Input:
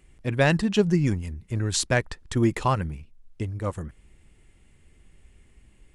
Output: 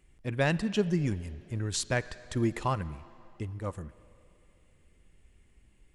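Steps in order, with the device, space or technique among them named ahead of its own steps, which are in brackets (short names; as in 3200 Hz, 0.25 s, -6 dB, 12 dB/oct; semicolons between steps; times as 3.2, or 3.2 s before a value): filtered reverb send (on a send: HPF 430 Hz 6 dB/oct + LPF 5000 Hz 12 dB/oct + reverb RT60 3.0 s, pre-delay 39 ms, DRR 16.5 dB); on the sum: gain -6.5 dB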